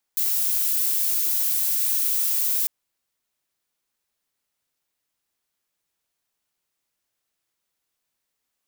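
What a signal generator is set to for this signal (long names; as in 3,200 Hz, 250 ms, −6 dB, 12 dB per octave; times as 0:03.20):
noise violet, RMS −22.5 dBFS 2.50 s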